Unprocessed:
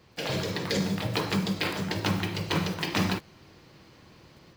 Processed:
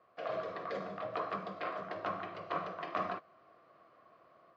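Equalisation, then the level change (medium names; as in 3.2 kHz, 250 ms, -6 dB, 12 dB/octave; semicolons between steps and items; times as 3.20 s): two resonant band-passes 880 Hz, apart 0.73 oct; distance through air 100 m; +4.0 dB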